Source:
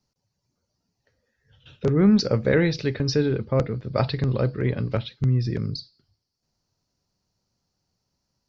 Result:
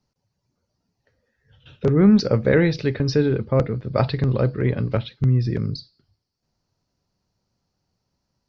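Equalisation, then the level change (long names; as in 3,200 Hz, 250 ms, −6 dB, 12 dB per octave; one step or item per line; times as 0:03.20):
high-shelf EQ 5,400 Hz −10.5 dB
+3.0 dB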